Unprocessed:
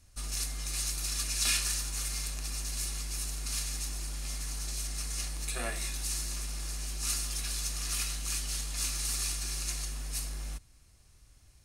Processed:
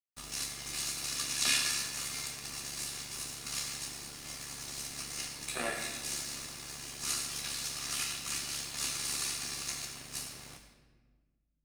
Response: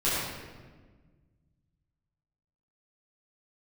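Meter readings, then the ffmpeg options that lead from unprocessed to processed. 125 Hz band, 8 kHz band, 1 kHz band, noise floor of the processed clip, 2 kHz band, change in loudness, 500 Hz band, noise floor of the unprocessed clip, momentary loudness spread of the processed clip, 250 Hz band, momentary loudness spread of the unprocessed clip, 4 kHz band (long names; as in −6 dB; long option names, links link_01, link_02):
−11.5 dB, −2.0 dB, +2.0 dB, −74 dBFS, +2.0 dB, −1.5 dB, +2.0 dB, −59 dBFS, 9 LU, 0.0 dB, 6 LU, +0.5 dB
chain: -filter_complex "[0:a]highpass=140,aemphasis=mode=reproduction:type=cd,tremolo=f=71:d=0.519,aeval=exprs='sgn(val(0))*max(abs(val(0))-0.00168,0)':channel_layout=same,asplit=2[link_01][link_02];[1:a]atrim=start_sample=2205,highshelf=frequency=2300:gain=11[link_03];[link_02][link_03]afir=irnorm=-1:irlink=0,volume=-18.5dB[link_04];[link_01][link_04]amix=inputs=2:normalize=0,volume=4dB"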